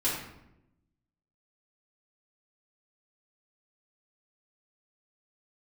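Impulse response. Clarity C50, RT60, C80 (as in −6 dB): 2.0 dB, 0.85 s, 5.0 dB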